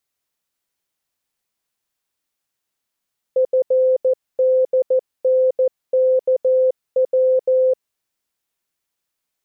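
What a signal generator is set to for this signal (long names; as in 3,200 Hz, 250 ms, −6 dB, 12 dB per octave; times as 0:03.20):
Morse code "FDNKW" 14 words per minute 516 Hz −12 dBFS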